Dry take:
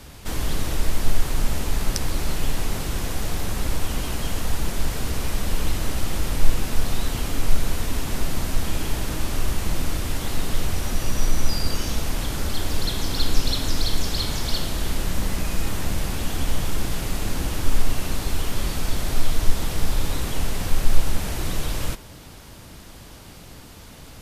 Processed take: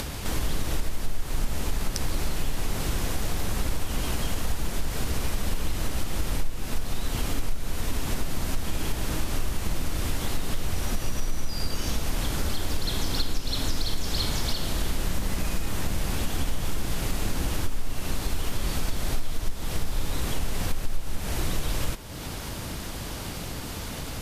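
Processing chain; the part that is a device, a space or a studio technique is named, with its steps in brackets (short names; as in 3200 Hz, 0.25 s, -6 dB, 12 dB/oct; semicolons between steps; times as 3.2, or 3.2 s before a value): upward and downward compression (upward compressor, threshold -24 dBFS; compressor 5:1, threshold -20 dBFS, peak gain reduction 14 dB)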